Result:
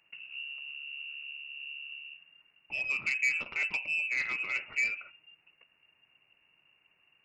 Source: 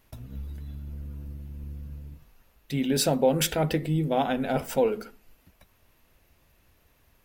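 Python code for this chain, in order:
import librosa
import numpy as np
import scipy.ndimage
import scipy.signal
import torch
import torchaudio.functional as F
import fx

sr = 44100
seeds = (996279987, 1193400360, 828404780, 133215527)

y = fx.freq_invert(x, sr, carrier_hz=2800)
y = fx.low_shelf(y, sr, hz=61.0, db=-8.0)
y = fx.transformer_sat(y, sr, knee_hz=2400.0)
y = y * librosa.db_to_amplitude(-6.5)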